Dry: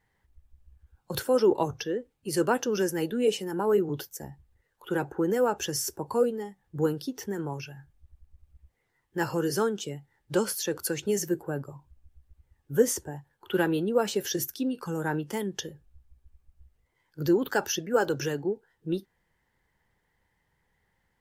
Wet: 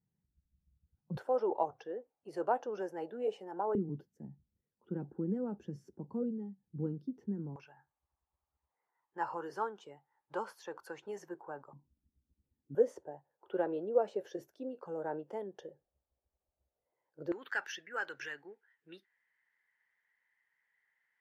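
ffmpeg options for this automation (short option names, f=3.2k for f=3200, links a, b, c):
-af "asetnsamples=n=441:p=0,asendcmd='1.17 bandpass f 730;3.75 bandpass f 200;7.56 bandpass f 940;11.73 bandpass f 240;12.75 bandpass f 600;17.32 bandpass f 1900',bandpass=f=170:t=q:w=3:csg=0"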